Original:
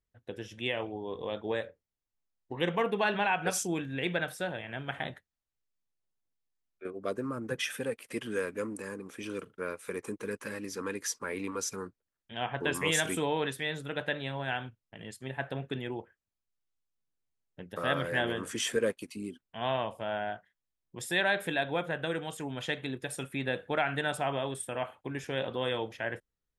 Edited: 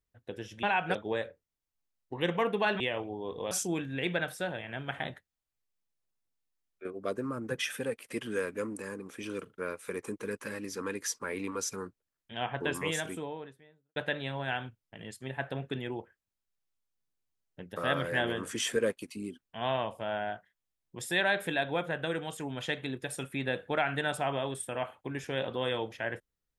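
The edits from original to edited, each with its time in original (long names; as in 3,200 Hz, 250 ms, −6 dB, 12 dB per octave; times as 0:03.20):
0:00.63–0:01.34: swap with 0:03.19–0:03.51
0:12.38–0:13.96: fade out and dull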